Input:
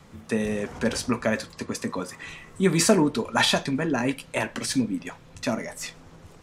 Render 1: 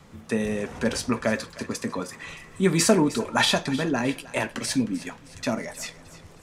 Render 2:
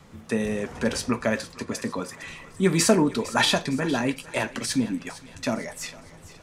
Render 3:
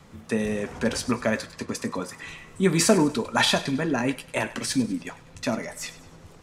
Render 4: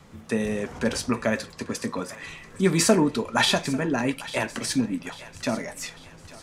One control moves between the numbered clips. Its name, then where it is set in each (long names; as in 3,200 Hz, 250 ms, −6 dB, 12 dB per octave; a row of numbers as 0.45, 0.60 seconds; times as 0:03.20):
feedback echo with a high-pass in the loop, delay time: 310, 458, 99, 846 milliseconds